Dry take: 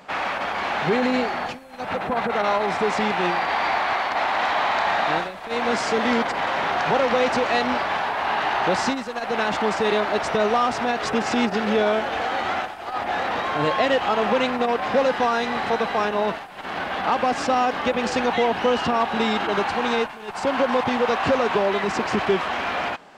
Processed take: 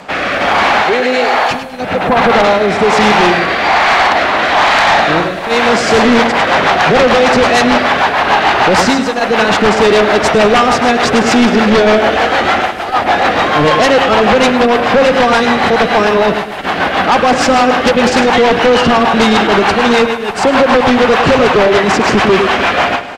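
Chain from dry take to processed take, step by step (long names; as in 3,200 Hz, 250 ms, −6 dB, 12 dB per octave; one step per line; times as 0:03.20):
0:00.82–0:01.51: high-pass filter 500 Hz 12 dB per octave
repeating echo 104 ms, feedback 40%, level −9.5 dB
rotating-speaker cabinet horn 1.2 Hz, later 6.7 Hz, at 0:05.52
sine wavefolder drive 9 dB, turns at −9 dBFS
level +4.5 dB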